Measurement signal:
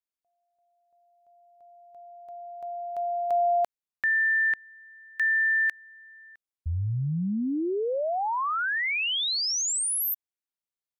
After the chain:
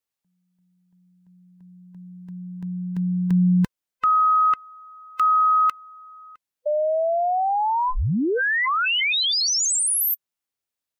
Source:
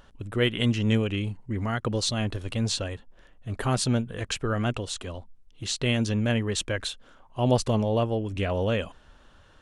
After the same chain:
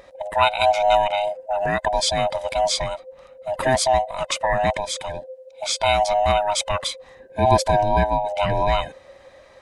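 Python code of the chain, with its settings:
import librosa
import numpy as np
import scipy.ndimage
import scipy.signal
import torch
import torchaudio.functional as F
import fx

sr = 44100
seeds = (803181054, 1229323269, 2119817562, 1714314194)

y = fx.band_swap(x, sr, width_hz=500)
y = y * librosa.db_to_amplitude(6.0)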